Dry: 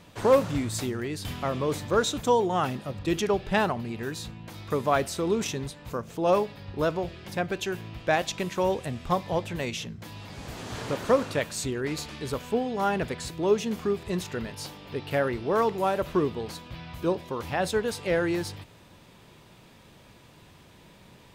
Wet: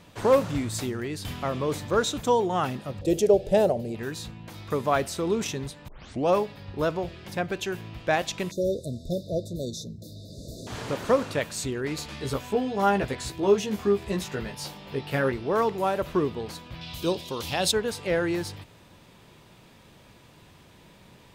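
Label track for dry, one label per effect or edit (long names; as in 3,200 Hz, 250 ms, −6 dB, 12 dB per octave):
3.010000	3.950000	drawn EQ curve 300 Hz 0 dB, 560 Hz +13 dB, 1,100 Hz −16 dB, 4,600 Hz −2 dB, 7,600 Hz +4 dB
5.880000	5.880000	tape start 0.40 s
8.510000	10.670000	linear-phase brick-wall band-stop 690–3,500 Hz
12.070000	15.320000	double-tracking delay 15 ms −3 dB
16.810000	17.720000	high shelf with overshoot 2,500 Hz +10 dB, Q 1.5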